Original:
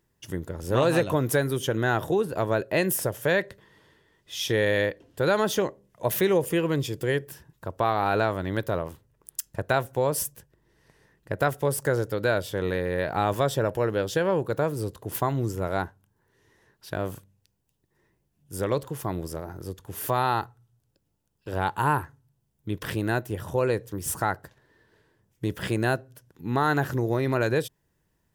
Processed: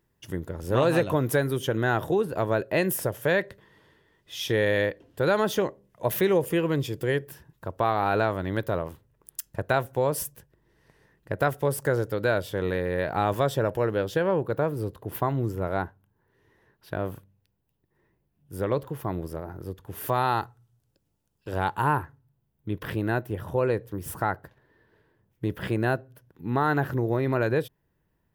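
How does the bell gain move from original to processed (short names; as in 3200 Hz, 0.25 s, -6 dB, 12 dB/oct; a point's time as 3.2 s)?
bell 7100 Hz 1.6 oct
13.8 s -5 dB
14.42 s -13 dB
19.71 s -13 dB
20.39 s -1 dB
21.59 s -1 dB
22.03 s -13 dB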